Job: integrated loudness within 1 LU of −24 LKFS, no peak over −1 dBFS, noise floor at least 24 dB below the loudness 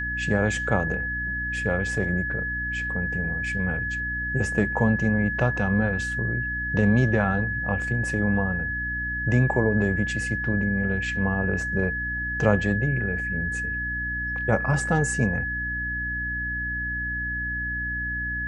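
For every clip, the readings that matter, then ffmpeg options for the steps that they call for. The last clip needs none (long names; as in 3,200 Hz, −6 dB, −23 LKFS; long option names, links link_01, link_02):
mains hum 60 Hz; hum harmonics up to 300 Hz; level of the hum −32 dBFS; interfering tone 1,700 Hz; level of the tone −27 dBFS; integrated loudness −25.0 LKFS; sample peak −5.0 dBFS; target loudness −24.0 LKFS
→ -af "bandreject=frequency=60:width_type=h:width=6,bandreject=frequency=120:width_type=h:width=6,bandreject=frequency=180:width_type=h:width=6,bandreject=frequency=240:width_type=h:width=6,bandreject=frequency=300:width_type=h:width=6"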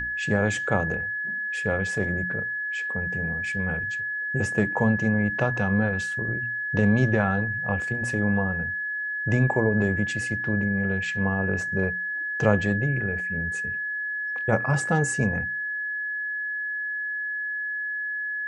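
mains hum none found; interfering tone 1,700 Hz; level of the tone −27 dBFS
→ -af "bandreject=frequency=1700:width=30"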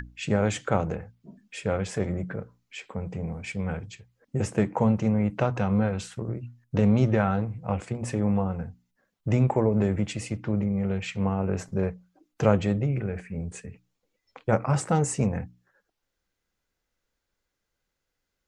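interfering tone none found; integrated loudness −27.0 LKFS; sample peak −5.5 dBFS; target loudness −24.0 LKFS
→ -af "volume=3dB"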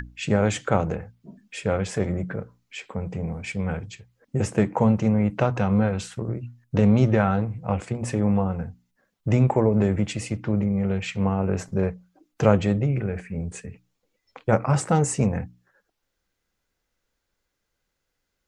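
integrated loudness −24.0 LKFS; sample peak −2.5 dBFS; background noise floor −79 dBFS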